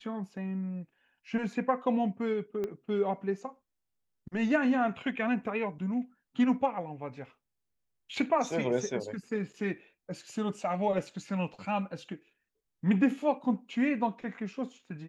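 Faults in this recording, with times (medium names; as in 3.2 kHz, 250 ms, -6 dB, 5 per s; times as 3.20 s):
2.64 s: pop -23 dBFS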